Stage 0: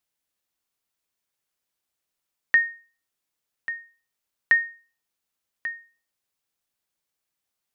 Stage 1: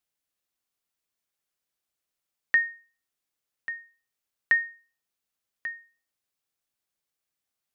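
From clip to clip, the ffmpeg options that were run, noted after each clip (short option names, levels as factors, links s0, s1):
-af "bandreject=f=940:w=17,volume=0.708"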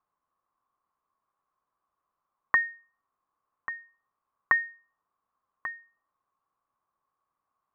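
-af "lowpass=f=1100:t=q:w=10,volume=1.5"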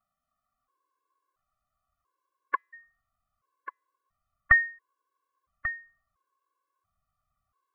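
-af "asuperstop=centerf=890:order=12:qfactor=4.1,asubboost=boost=10.5:cutoff=88,afftfilt=real='re*gt(sin(2*PI*0.73*pts/sr)*(1-2*mod(floor(b*sr/1024/290),2)),0)':imag='im*gt(sin(2*PI*0.73*pts/sr)*(1-2*mod(floor(b*sr/1024/290),2)),0)':win_size=1024:overlap=0.75,volume=1.78"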